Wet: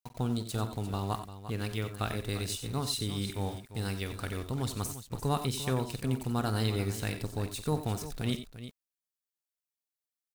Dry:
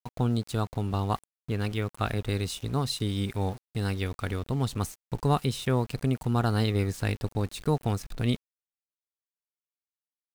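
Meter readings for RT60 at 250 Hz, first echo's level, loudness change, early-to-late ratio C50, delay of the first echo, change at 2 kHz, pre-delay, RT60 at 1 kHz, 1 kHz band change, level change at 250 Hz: none, -13.5 dB, -4.5 dB, none, 46 ms, -3.5 dB, none, none, -4.5 dB, -4.5 dB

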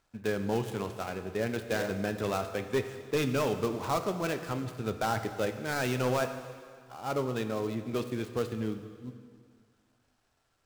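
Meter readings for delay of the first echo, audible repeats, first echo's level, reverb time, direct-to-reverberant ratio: none, none, none, 2.0 s, 8.0 dB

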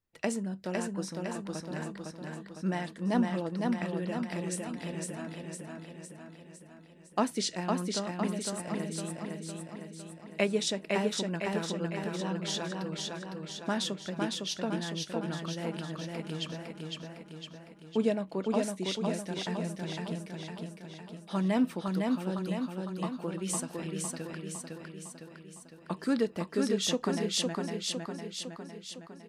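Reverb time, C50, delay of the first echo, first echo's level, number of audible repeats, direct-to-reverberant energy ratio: none, none, 0.507 s, -3.0 dB, 7, none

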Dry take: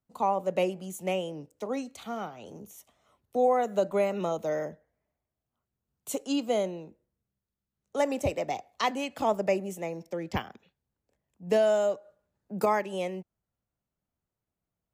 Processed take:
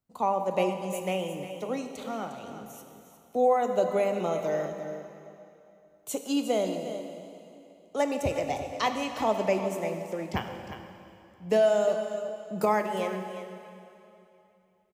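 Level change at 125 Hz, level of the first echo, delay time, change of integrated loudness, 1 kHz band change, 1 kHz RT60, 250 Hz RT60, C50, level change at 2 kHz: +1.5 dB, -11.5 dB, 0.356 s, +1.0 dB, +1.5 dB, 2.9 s, 3.0 s, 5.5 dB, +1.0 dB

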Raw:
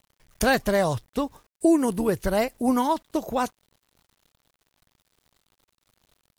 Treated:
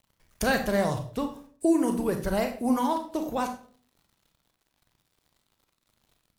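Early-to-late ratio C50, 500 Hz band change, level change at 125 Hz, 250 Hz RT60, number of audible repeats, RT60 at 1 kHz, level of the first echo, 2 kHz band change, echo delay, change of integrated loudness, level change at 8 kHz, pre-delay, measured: 9.5 dB, -3.5 dB, -2.0 dB, 0.60 s, none, 0.45 s, none, -3.0 dB, none, -3.0 dB, -3.5 dB, 29 ms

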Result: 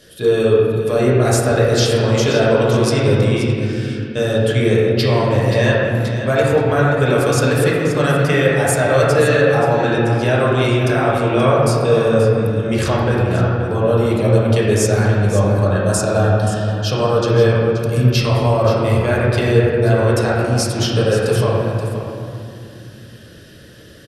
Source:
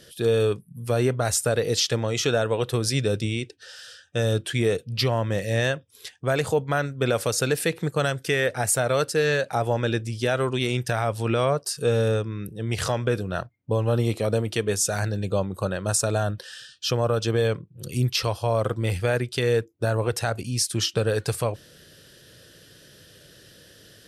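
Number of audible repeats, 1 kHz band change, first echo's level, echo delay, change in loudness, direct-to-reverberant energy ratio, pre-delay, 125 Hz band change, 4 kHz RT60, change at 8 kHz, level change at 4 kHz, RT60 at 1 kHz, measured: 1, +9.5 dB, -11.0 dB, 0.528 s, +9.0 dB, -6.5 dB, 4 ms, +10.5 dB, 1.6 s, +2.0 dB, +4.0 dB, 2.4 s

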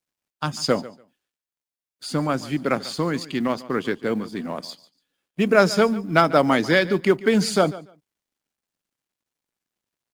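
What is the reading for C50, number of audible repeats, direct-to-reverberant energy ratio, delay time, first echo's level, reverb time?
none, 2, none, 0.144 s, -18.0 dB, none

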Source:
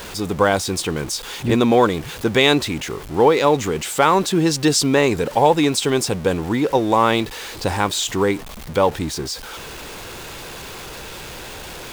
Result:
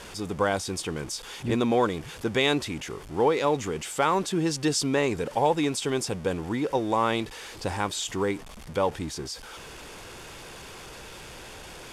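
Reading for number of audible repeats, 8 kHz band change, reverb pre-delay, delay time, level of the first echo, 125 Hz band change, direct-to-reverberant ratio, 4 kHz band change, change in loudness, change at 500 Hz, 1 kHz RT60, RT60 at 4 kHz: none, -8.5 dB, none, none, none, -8.5 dB, none, -9.5 dB, -8.5 dB, -8.5 dB, none, none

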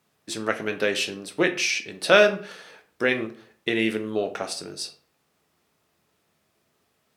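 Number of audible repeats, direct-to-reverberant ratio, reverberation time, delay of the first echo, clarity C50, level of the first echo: none, 6.0 dB, 0.45 s, none, 13.0 dB, none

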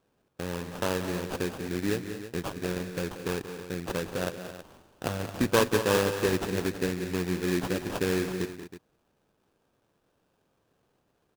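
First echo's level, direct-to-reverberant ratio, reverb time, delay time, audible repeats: -11.5 dB, none, none, 0.182 s, 3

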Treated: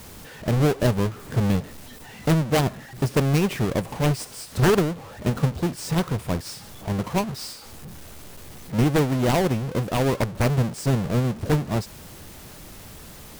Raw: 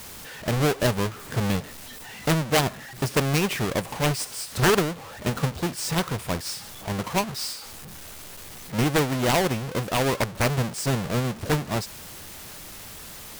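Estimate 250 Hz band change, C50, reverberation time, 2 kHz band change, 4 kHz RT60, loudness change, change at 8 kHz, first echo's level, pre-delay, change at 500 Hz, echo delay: +3.5 dB, none, none, -3.5 dB, none, +1.5 dB, -4.5 dB, none, none, +1.5 dB, none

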